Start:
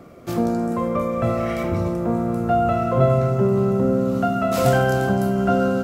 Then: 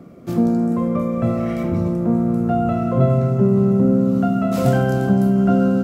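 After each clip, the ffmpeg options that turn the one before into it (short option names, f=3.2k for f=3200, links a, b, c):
-af "equalizer=f=200:t=o:w=1.8:g=11.5,volume=-5dB"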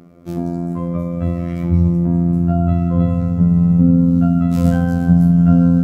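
-af "afftfilt=real='hypot(re,im)*cos(PI*b)':imag='0':win_size=2048:overlap=0.75,asubboost=boost=9.5:cutoff=160"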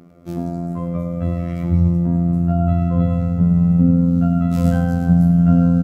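-af "aecho=1:1:103:0.316,volume=-2dB"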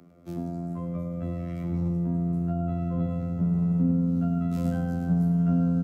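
-filter_complex "[0:a]acrossover=split=410[a][b];[b]acompressor=threshold=-38dB:ratio=1.5[c];[a][c]amix=inputs=2:normalize=0,acrossover=split=150|600[d][e][f];[d]asoftclip=type=tanh:threshold=-27dB[g];[g][e][f]amix=inputs=3:normalize=0,volume=-7.5dB"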